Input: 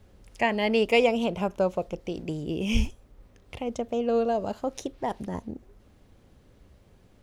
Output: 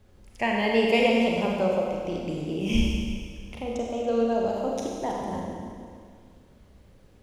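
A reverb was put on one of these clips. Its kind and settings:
four-comb reverb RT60 2.1 s, combs from 31 ms, DRR −2 dB
level −2.5 dB

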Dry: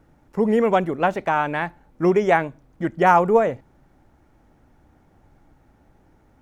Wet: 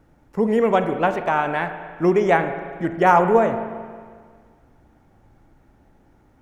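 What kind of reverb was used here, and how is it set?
spring reverb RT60 1.8 s, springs 36/45 ms, chirp 60 ms, DRR 8 dB

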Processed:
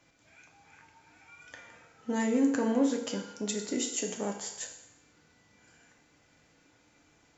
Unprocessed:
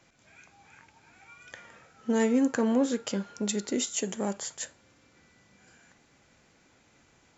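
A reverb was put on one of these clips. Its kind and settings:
feedback delay network reverb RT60 0.85 s, low-frequency decay 0.7×, high-frequency decay 1×, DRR 2.5 dB
level −4 dB

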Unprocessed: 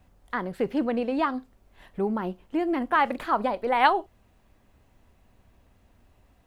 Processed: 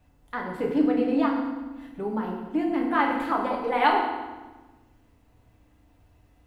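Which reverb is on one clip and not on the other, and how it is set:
feedback delay network reverb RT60 1.2 s, low-frequency decay 1.55×, high-frequency decay 0.85×, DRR −1.5 dB
level −4.5 dB

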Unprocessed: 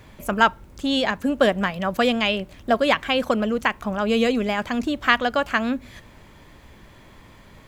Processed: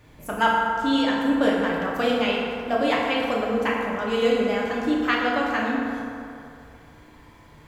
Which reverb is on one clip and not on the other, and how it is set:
feedback delay network reverb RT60 2.7 s, low-frequency decay 0.8×, high-frequency decay 0.45×, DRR −5 dB
level −8 dB

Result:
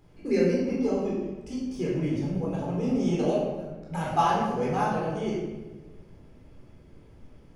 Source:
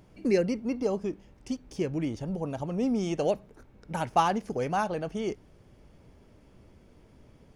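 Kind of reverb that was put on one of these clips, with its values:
rectangular room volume 770 cubic metres, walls mixed, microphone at 4 metres
level −7.5 dB

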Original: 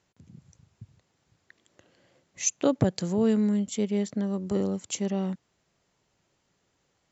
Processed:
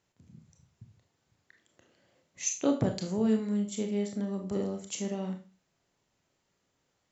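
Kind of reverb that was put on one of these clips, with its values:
four-comb reverb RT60 0.33 s, combs from 25 ms, DRR 3.5 dB
level −5.5 dB

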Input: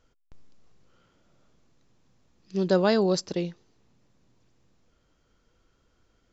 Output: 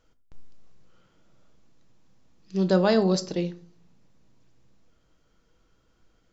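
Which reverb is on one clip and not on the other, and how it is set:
rectangular room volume 340 cubic metres, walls furnished, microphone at 0.62 metres

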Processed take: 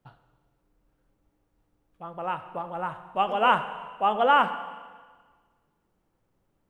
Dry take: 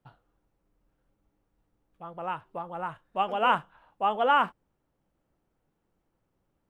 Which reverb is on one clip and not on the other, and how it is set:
four-comb reverb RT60 1.5 s, combs from 30 ms, DRR 10.5 dB
level +2.5 dB

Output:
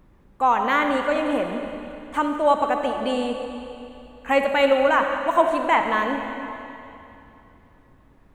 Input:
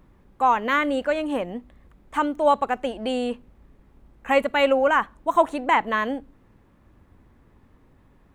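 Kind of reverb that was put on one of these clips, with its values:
comb and all-pass reverb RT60 2.9 s, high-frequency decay 0.95×, pre-delay 15 ms, DRR 4 dB

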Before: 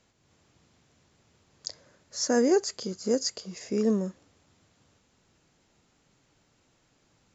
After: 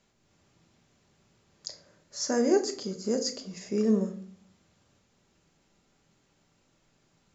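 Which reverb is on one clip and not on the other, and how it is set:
rectangular room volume 550 cubic metres, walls furnished, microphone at 1.2 metres
level −3 dB

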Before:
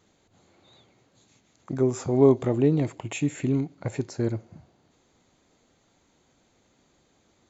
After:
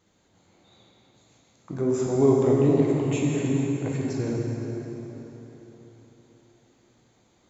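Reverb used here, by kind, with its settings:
dense smooth reverb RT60 4.1 s, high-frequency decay 0.75×, DRR −3 dB
level −3.5 dB

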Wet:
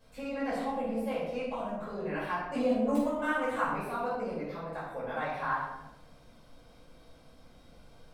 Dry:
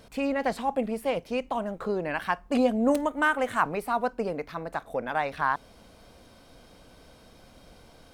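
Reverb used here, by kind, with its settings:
rectangular room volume 370 cubic metres, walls mixed, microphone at 5.4 metres
level −18.5 dB

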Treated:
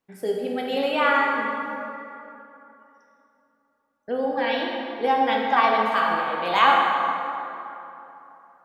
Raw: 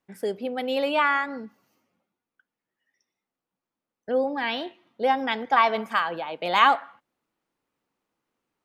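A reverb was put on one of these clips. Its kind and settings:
dense smooth reverb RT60 3.1 s, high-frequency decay 0.55×, DRR −2 dB
level −1.5 dB

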